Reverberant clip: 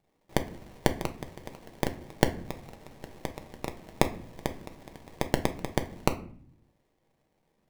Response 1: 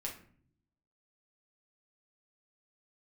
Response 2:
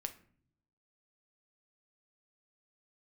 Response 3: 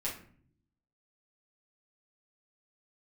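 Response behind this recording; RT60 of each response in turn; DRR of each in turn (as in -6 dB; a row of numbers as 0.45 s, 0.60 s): 2; 0.55 s, 0.55 s, 0.55 s; -3.0 dB, 6.0 dB, -8.0 dB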